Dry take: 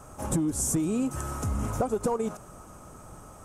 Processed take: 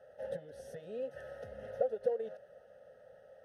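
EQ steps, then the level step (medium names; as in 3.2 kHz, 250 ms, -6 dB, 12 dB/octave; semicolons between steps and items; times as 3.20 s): vowel filter e; static phaser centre 1.6 kHz, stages 8; +5.5 dB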